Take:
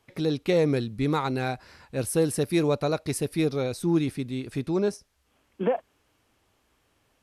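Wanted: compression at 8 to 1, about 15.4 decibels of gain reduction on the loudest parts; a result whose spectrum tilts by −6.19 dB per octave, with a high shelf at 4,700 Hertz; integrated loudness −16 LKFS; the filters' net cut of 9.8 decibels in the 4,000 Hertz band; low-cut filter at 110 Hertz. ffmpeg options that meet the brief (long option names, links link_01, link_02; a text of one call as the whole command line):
ffmpeg -i in.wav -af "highpass=110,equalizer=frequency=4000:width_type=o:gain=-9,highshelf=frequency=4700:gain=-4.5,acompressor=threshold=-35dB:ratio=8,volume=24dB" out.wav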